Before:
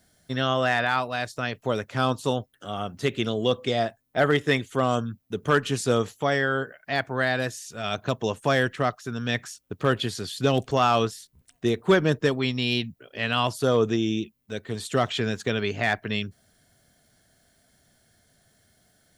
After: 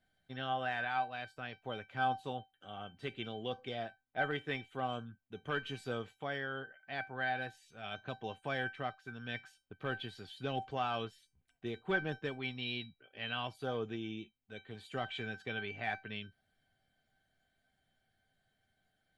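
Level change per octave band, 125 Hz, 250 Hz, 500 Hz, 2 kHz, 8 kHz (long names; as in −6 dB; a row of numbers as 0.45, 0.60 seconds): −16.5 dB, −17.0 dB, −17.0 dB, −11.0 dB, below −25 dB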